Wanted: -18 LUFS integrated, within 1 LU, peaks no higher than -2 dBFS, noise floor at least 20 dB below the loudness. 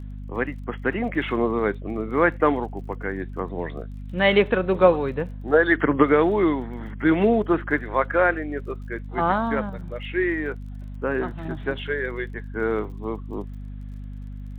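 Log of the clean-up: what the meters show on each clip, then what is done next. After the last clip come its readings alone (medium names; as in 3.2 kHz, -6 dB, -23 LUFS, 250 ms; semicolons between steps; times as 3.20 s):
tick rate 32 per s; hum 50 Hz; highest harmonic 250 Hz; hum level -32 dBFS; loudness -23.5 LUFS; peak level -2.5 dBFS; loudness target -18.0 LUFS
-> de-click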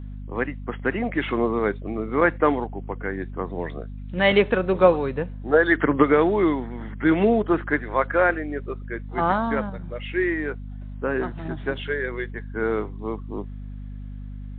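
tick rate 0 per s; hum 50 Hz; highest harmonic 250 Hz; hum level -32 dBFS
-> de-hum 50 Hz, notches 5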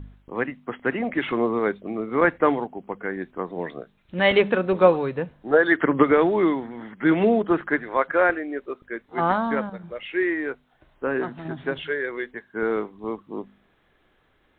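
hum not found; loudness -23.5 LUFS; peak level -2.5 dBFS; loudness target -18.0 LUFS
-> trim +5.5 dB; peak limiter -2 dBFS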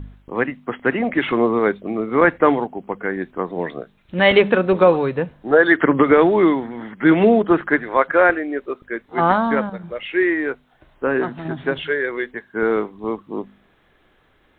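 loudness -18.5 LUFS; peak level -2.0 dBFS; noise floor -59 dBFS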